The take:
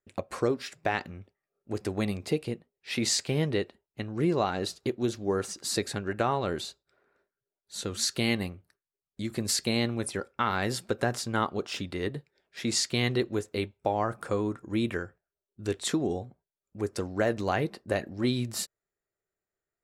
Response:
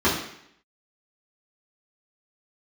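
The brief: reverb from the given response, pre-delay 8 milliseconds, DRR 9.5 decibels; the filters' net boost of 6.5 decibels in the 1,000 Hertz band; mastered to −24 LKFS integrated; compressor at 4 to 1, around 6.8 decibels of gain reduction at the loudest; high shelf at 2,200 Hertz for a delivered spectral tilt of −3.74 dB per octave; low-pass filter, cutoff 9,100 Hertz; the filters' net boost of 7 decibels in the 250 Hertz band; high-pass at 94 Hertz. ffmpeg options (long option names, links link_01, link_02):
-filter_complex "[0:a]highpass=94,lowpass=9100,equalizer=frequency=250:width_type=o:gain=8.5,equalizer=frequency=1000:width_type=o:gain=6.5,highshelf=frequency=2200:gain=8,acompressor=threshold=-24dB:ratio=4,asplit=2[link_01][link_02];[1:a]atrim=start_sample=2205,adelay=8[link_03];[link_02][link_03]afir=irnorm=-1:irlink=0,volume=-27.5dB[link_04];[link_01][link_04]amix=inputs=2:normalize=0,volume=5dB"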